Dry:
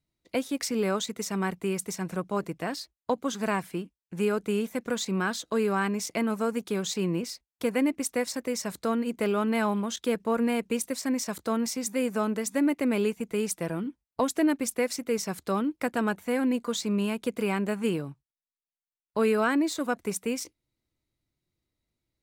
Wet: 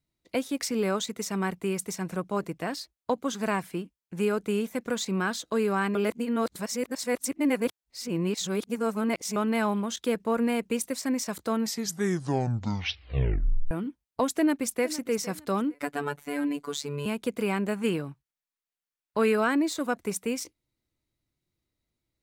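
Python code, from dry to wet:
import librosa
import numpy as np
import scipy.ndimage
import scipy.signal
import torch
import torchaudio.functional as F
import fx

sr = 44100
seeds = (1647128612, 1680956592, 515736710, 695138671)

y = fx.echo_throw(x, sr, start_s=14.34, length_s=0.58, ms=460, feedback_pct=25, wet_db=-16.0)
y = fx.robotise(y, sr, hz=144.0, at=(15.74, 17.06))
y = fx.peak_eq(y, sr, hz=1800.0, db=4.0, octaves=1.6, at=(17.84, 19.36))
y = fx.edit(y, sr, fx.reverse_span(start_s=5.95, length_s=3.41),
    fx.tape_stop(start_s=11.55, length_s=2.16), tone=tone)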